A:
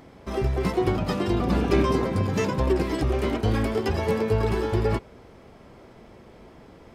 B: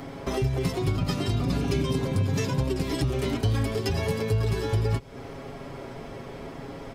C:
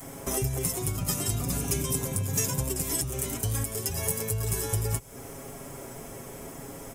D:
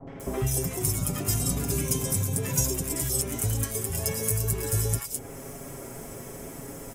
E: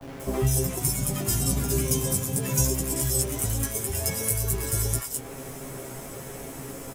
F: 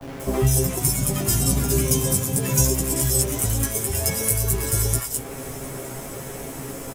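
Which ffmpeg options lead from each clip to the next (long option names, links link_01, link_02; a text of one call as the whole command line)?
ffmpeg -i in.wav -filter_complex "[0:a]acrossover=split=190|3000[link_01][link_02][link_03];[link_02]acompressor=threshold=-37dB:ratio=3[link_04];[link_01][link_04][link_03]amix=inputs=3:normalize=0,aecho=1:1:7.3:0.63,acompressor=threshold=-36dB:ratio=2,volume=8.5dB" out.wav
ffmpeg -i in.wav -af "aexciter=amount=15.5:drive=2.6:freq=6400,adynamicequalizer=threshold=0.0126:dfrequency=280:dqfactor=1:tfrequency=280:tqfactor=1:attack=5:release=100:ratio=0.375:range=2:mode=cutabove:tftype=bell,alimiter=limit=-9dB:level=0:latency=1:release=218,volume=-3.5dB" out.wav
ffmpeg -i in.wav -filter_complex "[0:a]acrossover=split=920|3300[link_01][link_02][link_03];[link_02]adelay=70[link_04];[link_03]adelay=200[link_05];[link_01][link_04][link_05]amix=inputs=3:normalize=0,volume=2dB" out.wav
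ffmpeg -i in.wav -filter_complex "[0:a]acrossover=split=500[link_01][link_02];[link_01]acrusher=bits=7:mix=0:aa=0.000001[link_03];[link_03][link_02]amix=inputs=2:normalize=0,asplit=2[link_04][link_05];[link_05]adelay=15,volume=-3dB[link_06];[link_04][link_06]amix=inputs=2:normalize=0" out.wav
ffmpeg -i in.wav -af "aecho=1:1:705:0.0891,volume=4.5dB" out.wav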